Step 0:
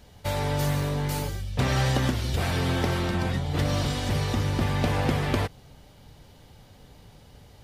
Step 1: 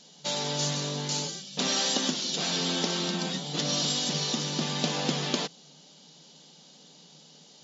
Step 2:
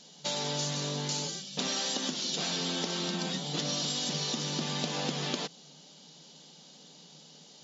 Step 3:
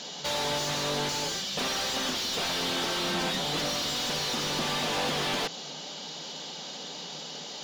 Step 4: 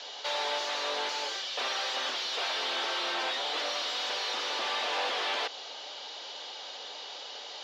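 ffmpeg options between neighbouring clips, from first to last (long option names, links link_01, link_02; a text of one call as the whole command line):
ffmpeg -i in.wav -af "lowshelf=frequency=320:gain=3.5,aexciter=amount=7:drive=1.4:freq=3000,afftfilt=real='re*between(b*sr/4096,140,7400)':imag='im*between(b*sr/4096,140,7400)':win_size=4096:overlap=0.75,volume=-5dB" out.wav
ffmpeg -i in.wav -af "acompressor=threshold=-29dB:ratio=6" out.wav
ffmpeg -i in.wav -filter_complex "[0:a]asplit=2[link_01][link_02];[link_02]highpass=frequency=720:poles=1,volume=32dB,asoftclip=type=tanh:threshold=-14.5dB[link_03];[link_01][link_03]amix=inputs=2:normalize=0,lowpass=frequency=2300:poles=1,volume=-6dB,volume=-4.5dB" out.wav
ffmpeg -i in.wav -filter_complex "[0:a]highpass=frequency=280:width=0.5412,highpass=frequency=280:width=1.3066,acrossover=split=450 5200:gain=0.126 1 0.0891[link_01][link_02][link_03];[link_01][link_02][link_03]amix=inputs=3:normalize=0" out.wav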